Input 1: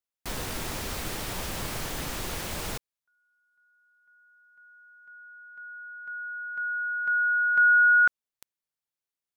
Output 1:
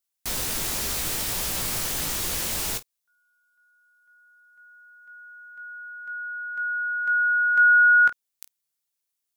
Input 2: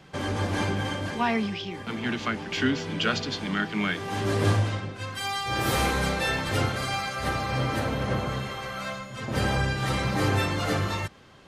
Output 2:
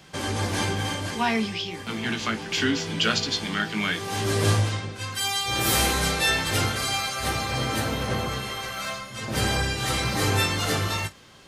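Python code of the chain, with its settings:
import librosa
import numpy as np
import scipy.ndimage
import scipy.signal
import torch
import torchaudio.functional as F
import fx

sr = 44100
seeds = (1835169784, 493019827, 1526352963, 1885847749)

p1 = fx.high_shelf(x, sr, hz=3500.0, db=12.0)
p2 = p1 + fx.room_early_taps(p1, sr, ms=(18, 50), db=(-7.5, -18.0), dry=0)
y = p2 * librosa.db_to_amplitude(-1.0)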